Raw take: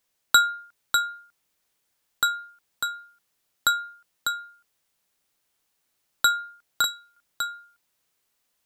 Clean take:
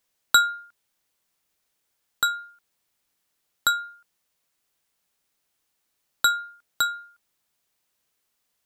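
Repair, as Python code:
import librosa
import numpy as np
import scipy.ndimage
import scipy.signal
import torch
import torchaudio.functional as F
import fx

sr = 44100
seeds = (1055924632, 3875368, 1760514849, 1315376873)

y = fx.fix_echo_inverse(x, sr, delay_ms=598, level_db=-5.5)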